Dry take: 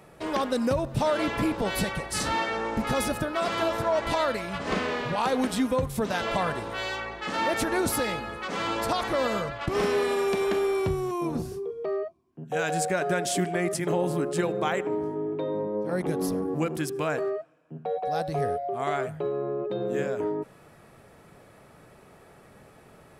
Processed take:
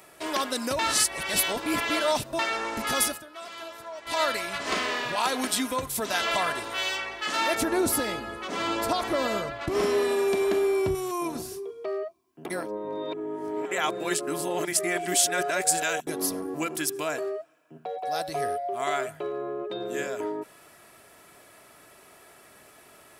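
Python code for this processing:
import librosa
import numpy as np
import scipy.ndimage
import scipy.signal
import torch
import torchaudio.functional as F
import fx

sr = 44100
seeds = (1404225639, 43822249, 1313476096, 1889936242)

y = fx.tilt_shelf(x, sr, db=7.0, hz=790.0, at=(7.55, 10.95))
y = fx.dynamic_eq(y, sr, hz=1600.0, q=0.81, threshold_db=-43.0, ratio=4.0, max_db=-4, at=(16.92, 18.05))
y = fx.edit(y, sr, fx.reverse_span(start_s=0.79, length_s=1.6),
    fx.fade_down_up(start_s=3.03, length_s=1.2, db=-15.5, fade_s=0.18),
    fx.reverse_span(start_s=12.45, length_s=3.62), tone=tone)
y = fx.tilt_eq(y, sr, slope=3.0)
y = y + 0.37 * np.pad(y, (int(3.0 * sr / 1000.0), 0))[:len(y)]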